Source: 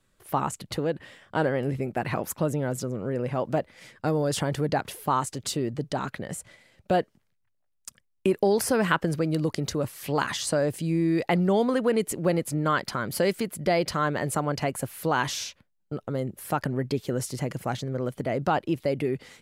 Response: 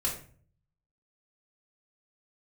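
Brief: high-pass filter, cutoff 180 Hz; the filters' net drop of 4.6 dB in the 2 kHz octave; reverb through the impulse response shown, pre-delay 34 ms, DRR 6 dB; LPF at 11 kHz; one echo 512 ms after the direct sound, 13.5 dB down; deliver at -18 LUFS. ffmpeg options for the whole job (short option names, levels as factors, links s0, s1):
-filter_complex "[0:a]highpass=180,lowpass=11000,equalizer=f=2000:t=o:g=-6.5,aecho=1:1:512:0.211,asplit=2[s0][s1];[1:a]atrim=start_sample=2205,adelay=34[s2];[s1][s2]afir=irnorm=-1:irlink=0,volume=0.266[s3];[s0][s3]amix=inputs=2:normalize=0,volume=2.99"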